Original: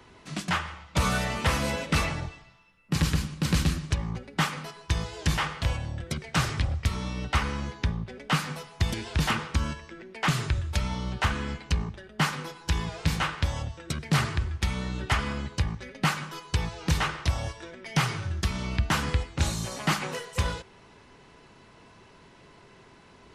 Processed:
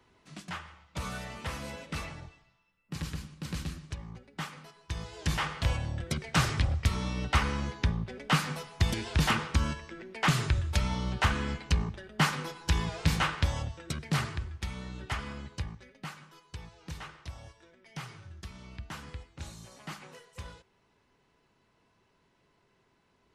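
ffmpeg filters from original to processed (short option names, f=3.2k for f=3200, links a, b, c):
-af "volume=-0.5dB,afade=t=in:st=4.81:d=0.98:silence=0.266073,afade=t=out:st=13.36:d=1.15:silence=0.375837,afade=t=out:st=15.61:d=0.43:silence=0.421697"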